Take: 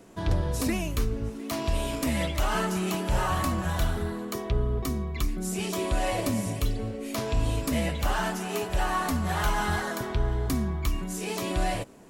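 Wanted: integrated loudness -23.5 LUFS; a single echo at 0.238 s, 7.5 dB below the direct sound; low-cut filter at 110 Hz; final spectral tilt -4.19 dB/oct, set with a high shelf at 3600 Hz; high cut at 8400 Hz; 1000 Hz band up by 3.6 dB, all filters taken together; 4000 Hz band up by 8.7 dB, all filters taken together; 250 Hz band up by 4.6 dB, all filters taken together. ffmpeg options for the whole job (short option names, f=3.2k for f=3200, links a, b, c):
-af "highpass=110,lowpass=8.4k,equalizer=f=250:t=o:g=6,equalizer=f=1k:t=o:g=3.5,highshelf=f=3.6k:g=3.5,equalizer=f=4k:t=o:g=9,aecho=1:1:238:0.422,volume=2dB"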